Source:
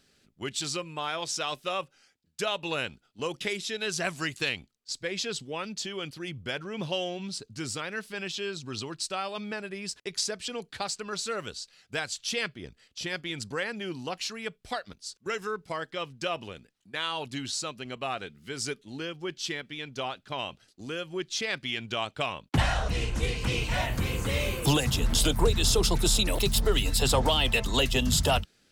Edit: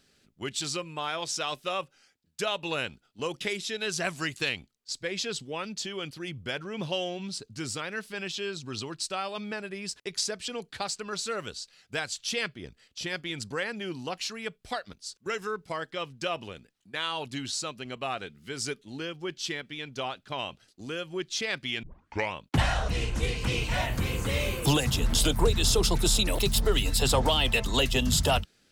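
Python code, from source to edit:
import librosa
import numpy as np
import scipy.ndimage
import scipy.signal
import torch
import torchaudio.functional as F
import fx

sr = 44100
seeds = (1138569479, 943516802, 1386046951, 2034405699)

y = fx.edit(x, sr, fx.tape_start(start_s=21.83, length_s=0.5), tone=tone)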